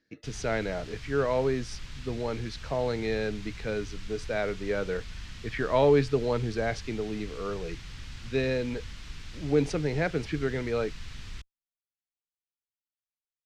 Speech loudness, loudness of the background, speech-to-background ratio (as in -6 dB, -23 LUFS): -30.0 LUFS, -44.0 LUFS, 14.0 dB